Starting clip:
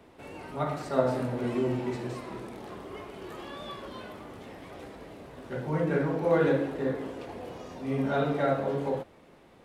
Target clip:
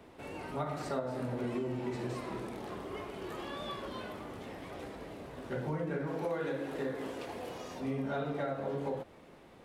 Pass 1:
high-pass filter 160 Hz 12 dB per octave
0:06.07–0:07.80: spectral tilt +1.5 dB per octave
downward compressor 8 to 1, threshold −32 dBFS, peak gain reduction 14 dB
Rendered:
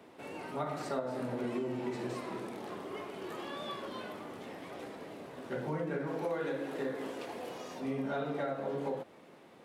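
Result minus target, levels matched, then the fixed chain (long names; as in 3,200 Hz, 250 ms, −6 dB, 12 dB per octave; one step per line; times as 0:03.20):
125 Hz band −3.5 dB
0:06.07–0:07.80: spectral tilt +1.5 dB per octave
downward compressor 8 to 1, threshold −32 dBFS, peak gain reduction 14 dB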